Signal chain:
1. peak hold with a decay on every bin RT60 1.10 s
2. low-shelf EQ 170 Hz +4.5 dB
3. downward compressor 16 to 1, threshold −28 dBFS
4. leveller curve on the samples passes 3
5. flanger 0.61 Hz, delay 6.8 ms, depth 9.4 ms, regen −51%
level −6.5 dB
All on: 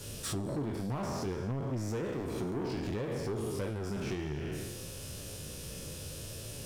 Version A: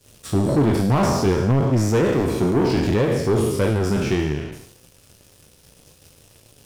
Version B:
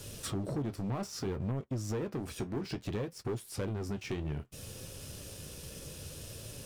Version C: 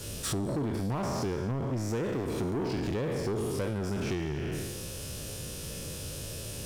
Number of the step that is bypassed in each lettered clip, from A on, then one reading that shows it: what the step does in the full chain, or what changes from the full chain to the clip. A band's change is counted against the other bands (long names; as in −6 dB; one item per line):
3, average gain reduction 9.5 dB
1, change in momentary loudness spread +2 LU
5, change in crest factor −2.0 dB